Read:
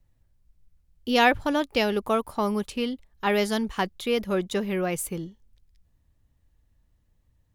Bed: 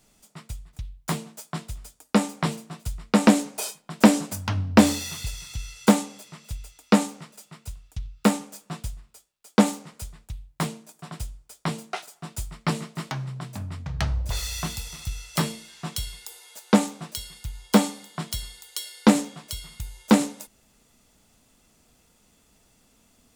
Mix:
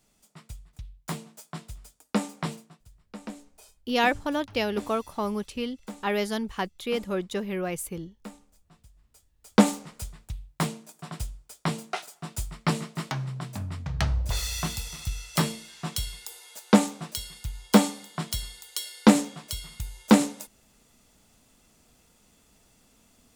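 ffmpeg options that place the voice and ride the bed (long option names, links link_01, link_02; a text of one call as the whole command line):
ffmpeg -i stem1.wav -i stem2.wav -filter_complex "[0:a]adelay=2800,volume=-3.5dB[link_01];[1:a]volume=17dB,afade=type=out:start_time=2.53:duration=0.27:silence=0.141254,afade=type=in:start_time=8.94:duration=0.61:silence=0.0707946[link_02];[link_01][link_02]amix=inputs=2:normalize=0" out.wav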